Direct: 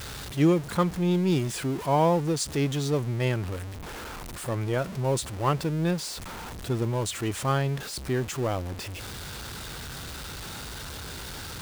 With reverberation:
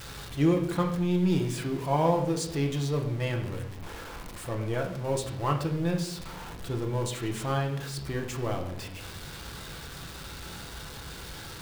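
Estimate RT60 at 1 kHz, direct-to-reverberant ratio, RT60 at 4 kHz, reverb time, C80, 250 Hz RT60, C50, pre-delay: 0.65 s, 2.0 dB, 0.75 s, 0.75 s, 11.0 dB, 0.95 s, 8.5 dB, 6 ms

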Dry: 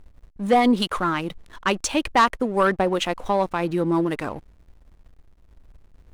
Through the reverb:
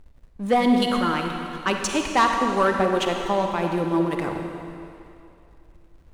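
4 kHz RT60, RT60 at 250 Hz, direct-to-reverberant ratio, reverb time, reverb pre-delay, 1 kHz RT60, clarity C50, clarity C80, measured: 2.5 s, 2.7 s, 3.0 dB, 2.7 s, 34 ms, 2.7 s, 3.5 dB, 4.5 dB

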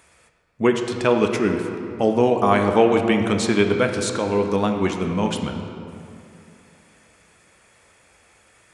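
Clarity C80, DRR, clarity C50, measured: 6.5 dB, 4.0 dB, 5.5 dB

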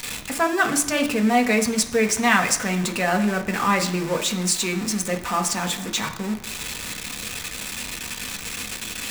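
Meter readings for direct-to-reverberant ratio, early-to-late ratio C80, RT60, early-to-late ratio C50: 4.0 dB, 14.0 dB, 1.0 s, 11.5 dB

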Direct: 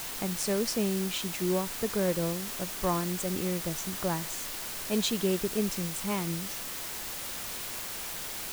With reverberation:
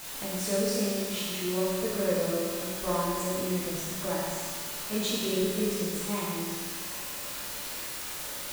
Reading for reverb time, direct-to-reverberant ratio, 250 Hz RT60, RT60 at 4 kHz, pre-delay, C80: 1.8 s, -7.0 dB, 1.8 s, 1.7 s, 11 ms, 0.0 dB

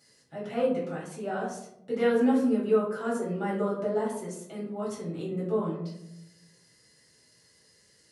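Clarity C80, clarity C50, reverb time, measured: 7.5 dB, 4.0 dB, 0.80 s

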